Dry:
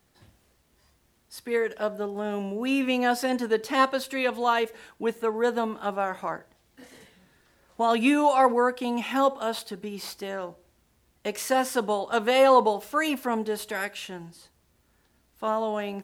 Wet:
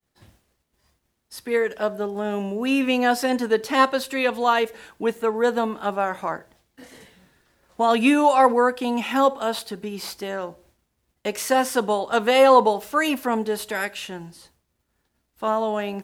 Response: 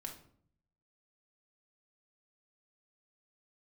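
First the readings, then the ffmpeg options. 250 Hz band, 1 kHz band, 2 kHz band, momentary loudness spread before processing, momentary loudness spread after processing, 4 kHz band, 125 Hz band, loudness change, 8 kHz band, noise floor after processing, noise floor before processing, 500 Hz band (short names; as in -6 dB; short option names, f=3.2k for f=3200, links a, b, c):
+4.0 dB, +4.0 dB, +4.0 dB, 14 LU, 14 LU, +4.0 dB, n/a, +4.0 dB, +4.0 dB, -75 dBFS, -67 dBFS, +4.0 dB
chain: -af "agate=range=-33dB:threshold=-57dB:ratio=3:detection=peak,volume=4dB"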